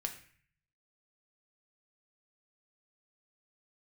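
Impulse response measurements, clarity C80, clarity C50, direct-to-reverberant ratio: 13.0 dB, 10.0 dB, 3.5 dB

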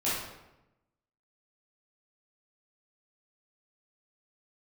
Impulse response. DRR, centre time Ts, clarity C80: -10.5 dB, 72 ms, 3.5 dB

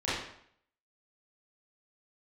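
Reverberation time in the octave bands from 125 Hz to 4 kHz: 0.65, 0.65, 0.65, 0.65, 0.65, 0.55 s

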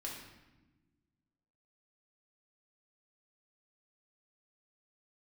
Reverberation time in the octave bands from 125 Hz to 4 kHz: 2.0, 2.0, 1.3, 1.0, 1.0, 0.85 s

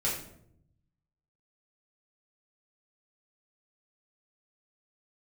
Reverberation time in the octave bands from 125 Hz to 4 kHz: 1.4, 1.1, 0.80, 0.60, 0.50, 0.45 s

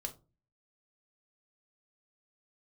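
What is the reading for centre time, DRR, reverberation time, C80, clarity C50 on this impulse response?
7 ms, 5.0 dB, not exponential, 22.5 dB, 16.0 dB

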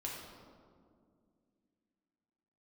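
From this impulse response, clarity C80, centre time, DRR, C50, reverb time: 2.5 dB, 84 ms, -3.5 dB, 1.0 dB, 2.2 s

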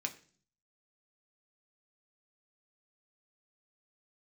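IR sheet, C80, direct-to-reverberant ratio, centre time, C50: 19.0 dB, 2.5 dB, 8 ms, 15.0 dB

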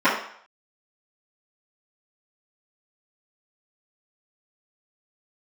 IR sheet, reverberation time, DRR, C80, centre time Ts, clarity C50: 0.60 s, -16.0 dB, 8.5 dB, 37 ms, 5.0 dB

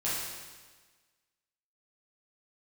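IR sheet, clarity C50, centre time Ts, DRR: -1.0 dB, 96 ms, -9.5 dB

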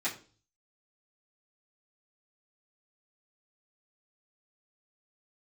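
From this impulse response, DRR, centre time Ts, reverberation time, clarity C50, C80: -11.0 dB, 18 ms, 0.40 s, 11.5 dB, 16.5 dB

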